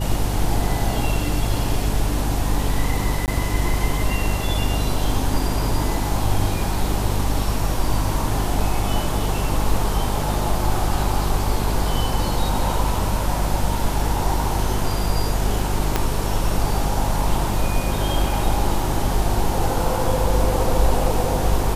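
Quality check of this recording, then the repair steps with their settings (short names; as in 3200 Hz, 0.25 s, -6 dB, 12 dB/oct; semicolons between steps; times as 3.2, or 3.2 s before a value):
hum 50 Hz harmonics 7 -24 dBFS
3.26–3.28 gap 18 ms
15.96 pop -4 dBFS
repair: de-click; de-hum 50 Hz, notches 7; interpolate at 3.26, 18 ms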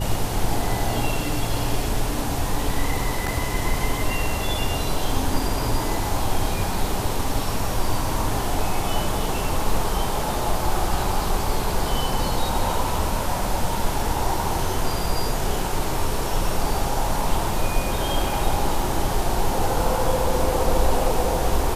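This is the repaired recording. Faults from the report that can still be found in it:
15.96 pop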